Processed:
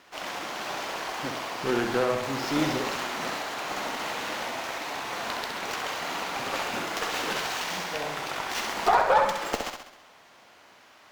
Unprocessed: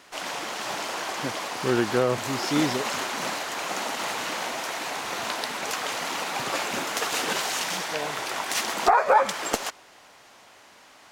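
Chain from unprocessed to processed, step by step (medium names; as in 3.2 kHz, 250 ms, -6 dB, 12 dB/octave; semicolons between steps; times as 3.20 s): median filter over 5 samples; Chebyshev shaper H 8 -25 dB, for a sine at -6 dBFS; flutter echo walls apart 11.3 m, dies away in 0.71 s; trim -3 dB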